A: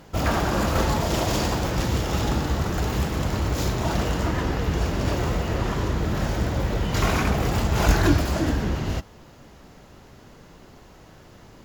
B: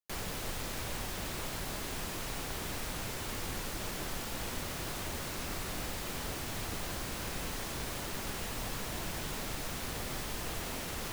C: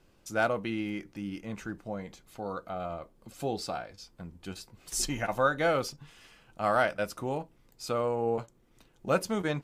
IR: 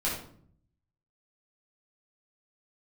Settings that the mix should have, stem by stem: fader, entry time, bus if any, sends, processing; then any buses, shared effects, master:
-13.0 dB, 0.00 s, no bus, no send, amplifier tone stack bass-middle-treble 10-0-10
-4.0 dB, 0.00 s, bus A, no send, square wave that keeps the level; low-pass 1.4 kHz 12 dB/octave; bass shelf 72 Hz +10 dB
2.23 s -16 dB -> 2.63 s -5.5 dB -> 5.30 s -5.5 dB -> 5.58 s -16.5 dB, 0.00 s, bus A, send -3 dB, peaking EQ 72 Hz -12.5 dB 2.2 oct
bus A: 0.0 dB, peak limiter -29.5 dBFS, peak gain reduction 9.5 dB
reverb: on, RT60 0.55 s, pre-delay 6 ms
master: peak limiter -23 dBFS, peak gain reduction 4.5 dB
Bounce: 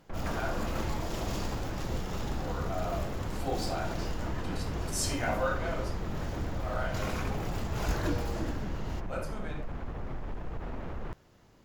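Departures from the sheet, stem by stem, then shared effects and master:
stem A: missing amplifier tone stack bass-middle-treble 10-0-10; master: missing peak limiter -23 dBFS, peak gain reduction 4.5 dB

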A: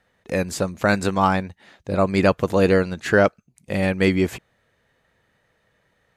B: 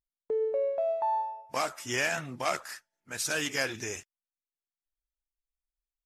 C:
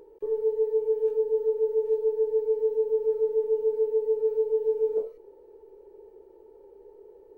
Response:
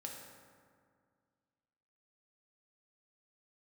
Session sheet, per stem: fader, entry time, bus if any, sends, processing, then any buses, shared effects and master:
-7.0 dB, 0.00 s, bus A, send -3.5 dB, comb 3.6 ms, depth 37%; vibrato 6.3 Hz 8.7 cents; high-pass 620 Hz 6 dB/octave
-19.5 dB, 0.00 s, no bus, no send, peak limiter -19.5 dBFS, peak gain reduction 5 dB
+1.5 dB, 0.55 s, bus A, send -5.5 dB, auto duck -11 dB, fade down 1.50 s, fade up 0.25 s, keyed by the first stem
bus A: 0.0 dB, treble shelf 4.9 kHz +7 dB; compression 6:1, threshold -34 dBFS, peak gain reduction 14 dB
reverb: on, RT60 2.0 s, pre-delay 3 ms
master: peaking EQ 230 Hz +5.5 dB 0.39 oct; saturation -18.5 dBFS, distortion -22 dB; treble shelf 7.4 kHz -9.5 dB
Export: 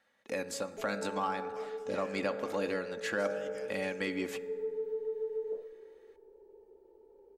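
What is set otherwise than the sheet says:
stem C +1.5 dB -> -9.0 dB; reverb return -6.5 dB

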